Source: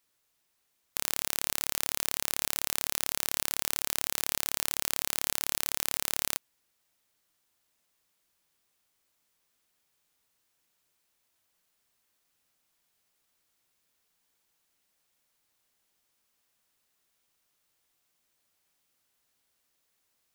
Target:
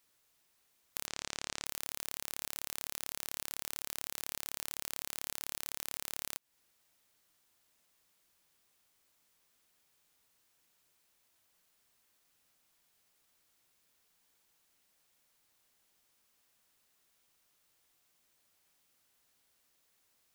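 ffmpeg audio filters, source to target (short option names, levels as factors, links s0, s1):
-filter_complex "[0:a]asettb=1/sr,asplit=3[s0][s1][s2];[s0]atrim=end=1.074[s3];[s1]atrim=start=1.07:end=1.66,asetpts=PTS-STARTPTS,afade=t=in:d=0.004:c=qsin,afade=t=out:st=0.586:d=0.004:c=qsin,lowpass=f=7600:w=0.5412,lowpass=f=7600:w=1.3066[s4];[s2]atrim=start=1.656[s5];[s3][s4]acrossfade=d=0.004:c1=hsin:c2=qsin[s6];[s6][s5]acrossfade=d=0.004:c1=qsin:c2=hsin,acompressor=threshold=0.0178:ratio=6,volume=1.26"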